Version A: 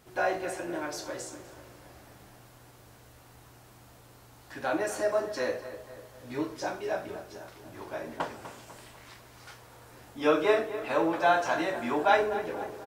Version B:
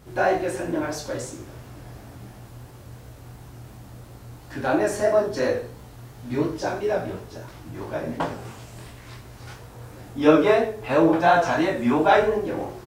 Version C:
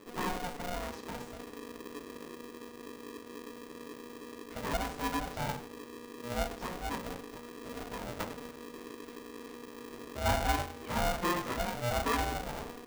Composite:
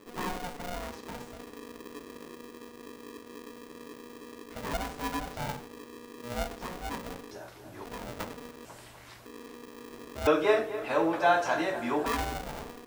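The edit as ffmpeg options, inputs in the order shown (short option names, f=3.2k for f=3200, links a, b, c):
-filter_complex "[0:a]asplit=3[a][b][c];[2:a]asplit=4[d][e][f][g];[d]atrim=end=7.312[h];[a]atrim=start=7.308:end=7.852[i];[e]atrim=start=7.848:end=8.652[j];[b]atrim=start=8.648:end=9.262[k];[f]atrim=start=9.258:end=10.272[l];[c]atrim=start=10.268:end=12.062[m];[g]atrim=start=12.058[n];[h][i]acrossfade=d=0.004:c1=hsin:c2=hsin[o];[o][j]acrossfade=d=0.004:c1=hsin:c2=hsin[p];[p][k]acrossfade=d=0.004:c1=hsin:c2=hsin[q];[q][l]acrossfade=d=0.004:c1=hsin:c2=hsin[r];[r][m]acrossfade=d=0.004:c1=hsin:c2=hsin[s];[s][n]acrossfade=d=0.004:c1=hsin:c2=hsin"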